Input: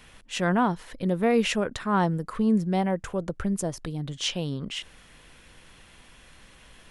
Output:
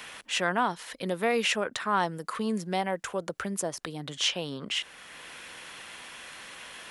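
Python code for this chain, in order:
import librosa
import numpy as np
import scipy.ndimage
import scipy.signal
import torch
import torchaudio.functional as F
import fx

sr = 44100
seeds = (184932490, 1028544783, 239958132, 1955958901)

y = fx.highpass(x, sr, hz=870.0, slope=6)
y = fx.band_squash(y, sr, depth_pct=40)
y = F.gain(torch.from_numpy(y), 3.5).numpy()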